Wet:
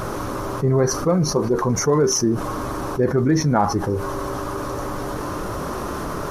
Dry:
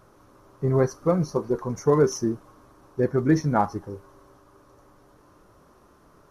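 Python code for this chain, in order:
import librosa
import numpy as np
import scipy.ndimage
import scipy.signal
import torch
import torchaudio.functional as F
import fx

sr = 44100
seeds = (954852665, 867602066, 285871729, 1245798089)

y = fx.env_flatten(x, sr, amount_pct=70)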